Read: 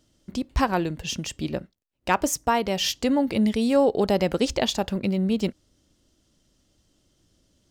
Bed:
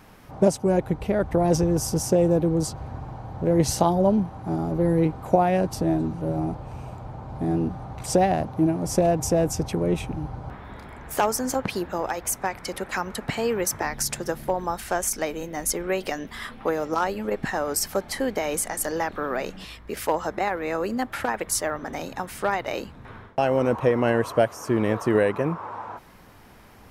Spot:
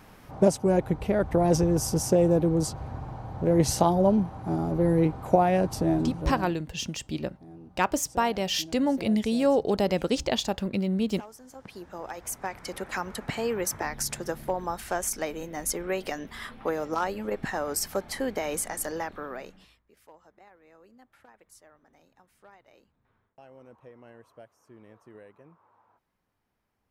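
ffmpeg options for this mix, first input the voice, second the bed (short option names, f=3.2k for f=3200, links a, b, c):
-filter_complex "[0:a]adelay=5700,volume=-3dB[a];[1:a]volume=17.5dB,afade=t=out:st=6.08:d=0.5:silence=0.0841395,afade=t=in:st=11.51:d=1.32:silence=0.112202,afade=t=out:st=18.74:d=1.09:silence=0.0530884[b];[a][b]amix=inputs=2:normalize=0"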